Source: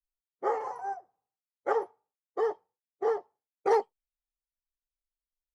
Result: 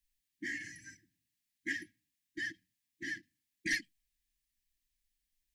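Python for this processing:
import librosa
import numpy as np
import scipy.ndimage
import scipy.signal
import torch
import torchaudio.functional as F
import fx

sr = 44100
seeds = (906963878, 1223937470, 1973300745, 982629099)

y = fx.brickwall_bandstop(x, sr, low_hz=330.0, high_hz=1600.0)
y = fx.end_taper(y, sr, db_per_s=410.0)
y = y * 10.0 ** (10.0 / 20.0)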